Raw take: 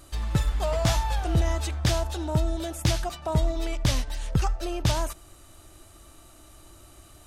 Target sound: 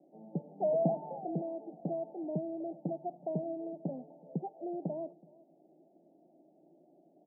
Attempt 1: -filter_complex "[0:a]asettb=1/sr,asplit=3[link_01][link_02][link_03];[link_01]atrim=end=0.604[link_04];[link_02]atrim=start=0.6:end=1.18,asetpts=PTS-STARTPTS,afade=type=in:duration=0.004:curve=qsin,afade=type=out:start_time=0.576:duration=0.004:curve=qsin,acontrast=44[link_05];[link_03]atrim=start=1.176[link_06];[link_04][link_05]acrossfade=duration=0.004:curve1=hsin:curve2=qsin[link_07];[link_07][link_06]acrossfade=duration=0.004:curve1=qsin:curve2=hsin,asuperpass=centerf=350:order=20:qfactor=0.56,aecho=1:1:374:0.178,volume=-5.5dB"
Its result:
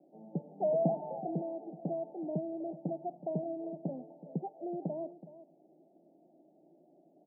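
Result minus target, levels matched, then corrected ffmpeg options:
echo-to-direct +8.5 dB
-filter_complex "[0:a]asettb=1/sr,asplit=3[link_01][link_02][link_03];[link_01]atrim=end=0.604[link_04];[link_02]atrim=start=0.6:end=1.18,asetpts=PTS-STARTPTS,afade=type=in:duration=0.004:curve=qsin,afade=type=out:start_time=0.576:duration=0.004:curve=qsin,acontrast=44[link_05];[link_03]atrim=start=1.176[link_06];[link_04][link_05]acrossfade=duration=0.004:curve1=hsin:curve2=qsin[link_07];[link_07][link_06]acrossfade=duration=0.004:curve1=qsin:curve2=hsin,asuperpass=centerf=350:order=20:qfactor=0.56,aecho=1:1:374:0.0668,volume=-5.5dB"

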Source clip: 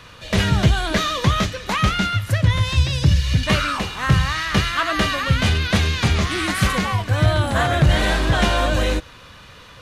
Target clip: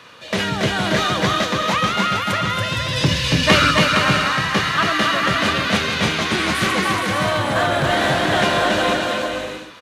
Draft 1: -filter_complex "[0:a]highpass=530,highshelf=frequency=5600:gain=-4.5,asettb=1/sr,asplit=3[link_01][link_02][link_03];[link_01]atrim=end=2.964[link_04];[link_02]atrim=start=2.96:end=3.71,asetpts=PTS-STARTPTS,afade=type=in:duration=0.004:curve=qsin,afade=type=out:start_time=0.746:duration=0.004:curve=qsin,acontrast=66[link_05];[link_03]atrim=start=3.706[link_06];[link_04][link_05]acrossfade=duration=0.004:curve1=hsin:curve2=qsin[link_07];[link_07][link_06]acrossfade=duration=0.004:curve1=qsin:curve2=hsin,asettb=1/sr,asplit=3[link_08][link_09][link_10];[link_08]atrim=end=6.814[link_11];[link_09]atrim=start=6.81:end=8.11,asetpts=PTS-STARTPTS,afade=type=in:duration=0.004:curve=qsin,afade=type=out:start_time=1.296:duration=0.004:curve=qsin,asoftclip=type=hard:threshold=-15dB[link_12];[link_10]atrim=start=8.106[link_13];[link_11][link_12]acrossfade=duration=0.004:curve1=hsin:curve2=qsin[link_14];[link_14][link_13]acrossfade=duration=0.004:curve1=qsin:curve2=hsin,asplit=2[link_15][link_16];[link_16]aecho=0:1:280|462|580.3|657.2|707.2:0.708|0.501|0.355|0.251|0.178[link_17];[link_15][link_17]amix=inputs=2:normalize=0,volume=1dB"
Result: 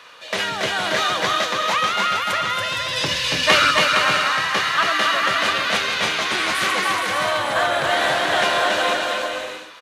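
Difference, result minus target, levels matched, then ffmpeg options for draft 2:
250 Hz band −10.0 dB
-filter_complex "[0:a]highpass=220,highshelf=frequency=5600:gain=-4.5,asettb=1/sr,asplit=3[link_01][link_02][link_03];[link_01]atrim=end=2.964[link_04];[link_02]atrim=start=2.96:end=3.71,asetpts=PTS-STARTPTS,afade=type=in:duration=0.004:curve=qsin,afade=type=out:start_time=0.746:duration=0.004:curve=qsin,acontrast=66[link_05];[link_03]atrim=start=3.706[link_06];[link_04][link_05]acrossfade=duration=0.004:curve1=hsin:curve2=qsin[link_07];[link_07][link_06]acrossfade=duration=0.004:curve1=qsin:curve2=hsin,asettb=1/sr,asplit=3[link_08][link_09][link_10];[link_08]atrim=end=6.814[link_11];[link_09]atrim=start=6.81:end=8.11,asetpts=PTS-STARTPTS,afade=type=in:duration=0.004:curve=qsin,afade=type=out:start_time=1.296:duration=0.004:curve=qsin,asoftclip=type=hard:threshold=-15dB[link_12];[link_10]atrim=start=8.106[link_13];[link_11][link_12]acrossfade=duration=0.004:curve1=hsin:curve2=qsin[link_14];[link_14][link_13]acrossfade=duration=0.004:curve1=qsin:curve2=hsin,asplit=2[link_15][link_16];[link_16]aecho=0:1:280|462|580.3|657.2|707.2:0.708|0.501|0.355|0.251|0.178[link_17];[link_15][link_17]amix=inputs=2:normalize=0,volume=1dB"

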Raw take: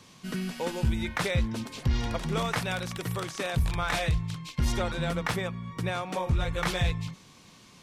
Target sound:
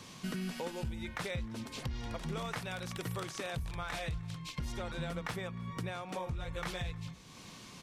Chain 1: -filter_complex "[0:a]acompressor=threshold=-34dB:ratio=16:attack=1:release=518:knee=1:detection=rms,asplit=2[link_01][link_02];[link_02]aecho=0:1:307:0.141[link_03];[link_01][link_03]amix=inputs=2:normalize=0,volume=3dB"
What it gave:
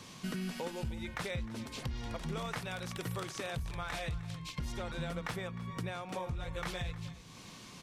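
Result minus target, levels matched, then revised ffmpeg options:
echo-to-direct +7 dB
-filter_complex "[0:a]acompressor=threshold=-34dB:ratio=16:attack=1:release=518:knee=1:detection=rms,asplit=2[link_01][link_02];[link_02]aecho=0:1:307:0.0631[link_03];[link_01][link_03]amix=inputs=2:normalize=0,volume=3dB"

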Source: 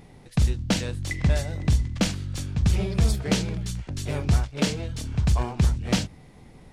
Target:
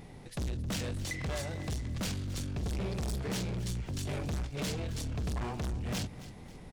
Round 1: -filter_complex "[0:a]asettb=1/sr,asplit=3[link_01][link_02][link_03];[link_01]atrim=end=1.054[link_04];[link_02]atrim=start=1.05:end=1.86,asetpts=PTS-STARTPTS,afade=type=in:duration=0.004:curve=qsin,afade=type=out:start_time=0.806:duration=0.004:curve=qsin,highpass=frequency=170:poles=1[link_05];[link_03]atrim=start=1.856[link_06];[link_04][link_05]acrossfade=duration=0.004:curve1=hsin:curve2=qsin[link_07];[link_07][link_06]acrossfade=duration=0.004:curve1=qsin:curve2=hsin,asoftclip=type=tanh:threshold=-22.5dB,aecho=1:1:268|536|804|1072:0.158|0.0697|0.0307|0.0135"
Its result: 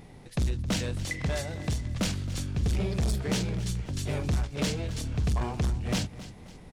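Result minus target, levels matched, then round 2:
soft clipping: distortion −6 dB
-filter_complex "[0:a]asettb=1/sr,asplit=3[link_01][link_02][link_03];[link_01]atrim=end=1.054[link_04];[link_02]atrim=start=1.05:end=1.86,asetpts=PTS-STARTPTS,afade=type=in:duration=0.004:curve=qsin,afade=type=out:start_time=0.806:duration=0.004:curve=qsin,highpass=frequency=170:poles=1[link_05];[link_03]atrim=start=1.856[link_06];[link_04][link_05]acrossfade=duration=0.004:curve1=hsin:curve2=qsin[link_07];[link_07][link_06]acrossfade=duration=0.004:curve1=qsin:curve2=hsin,asoftclip=type=tanh:threshold=-32dB,aecho=1:1:268|536|804|1072:0.158|0.0697|0.0307|0.0135"

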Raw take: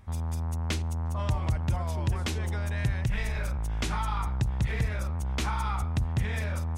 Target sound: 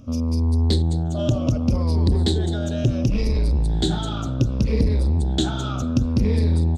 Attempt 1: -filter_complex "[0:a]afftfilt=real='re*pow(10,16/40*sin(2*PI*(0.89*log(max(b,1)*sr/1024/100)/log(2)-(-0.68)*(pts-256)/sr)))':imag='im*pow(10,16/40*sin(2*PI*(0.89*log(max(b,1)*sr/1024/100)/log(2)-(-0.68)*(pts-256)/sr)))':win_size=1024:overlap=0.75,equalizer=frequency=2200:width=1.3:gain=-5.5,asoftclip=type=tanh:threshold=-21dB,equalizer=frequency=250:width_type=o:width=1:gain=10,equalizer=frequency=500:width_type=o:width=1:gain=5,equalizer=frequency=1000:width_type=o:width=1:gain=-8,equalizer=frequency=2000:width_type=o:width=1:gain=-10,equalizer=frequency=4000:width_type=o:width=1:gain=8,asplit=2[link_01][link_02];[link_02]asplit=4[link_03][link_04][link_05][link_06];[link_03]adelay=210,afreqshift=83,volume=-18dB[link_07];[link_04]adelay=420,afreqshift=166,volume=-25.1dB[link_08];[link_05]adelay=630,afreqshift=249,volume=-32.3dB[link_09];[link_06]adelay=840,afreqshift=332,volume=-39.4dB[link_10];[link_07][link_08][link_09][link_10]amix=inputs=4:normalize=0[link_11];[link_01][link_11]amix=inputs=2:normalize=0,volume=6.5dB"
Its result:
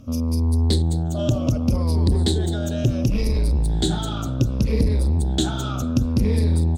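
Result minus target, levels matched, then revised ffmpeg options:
8,000 Hz band +4.0 dB
-filter_complex "[0:a]afftfilt=real='re*pow(10,16/40*sin(2*PI*(0.89*log(max(b,1)*sr/1024/100)/log(2)-(-0.68)*(pts-256)/sr)))':imag='im*pow(10,16/40*sin(2*PI*(0.89*log(max(b,1)*sr/1024/100)/log(2)-(-0.68)*(pts-256)/sr)))':win_size=1024:overlap=0.75,lowpass=6600,equalizer=frequency=2200:width=1.3:gain=-5.5,asoftclip=type=tanh:threshold=-21dB,equalizer=frequency=250:width_type=o:width=1:gain=10,equalizer=frequency=500:width_type=o:width=1:gain=5,equalizer=frequency=1000:width_type=o:width=1:gain=-8,equalizer=frequency=2000:width_type=o:width=1:gain=-10,equalizer=frequency=4000:width_type=o:width=1:gain=8,asplit=2[link_01][link_02];[link_02]asplit=4[link_03][link_04][link_05][link_06];[link_03]adelay=210,afreqshift=83,volume=-18dB[link_07];[link_04]adelay=420,afreqshift=166,volume=-25.1dB[link_08];[link_05]adelay=630,afreqshift=249,volume=-32.3dB[link_09];[link_06]adelay=840,afreqshift=332,volume=-39.4dB[link_10];[link_07][link_08][link_09][link_10]amix=inputs=4:normalize=0[link_11];[link_01][link_11]amix=inputs=2:normalize=0,volume=6.5dB"

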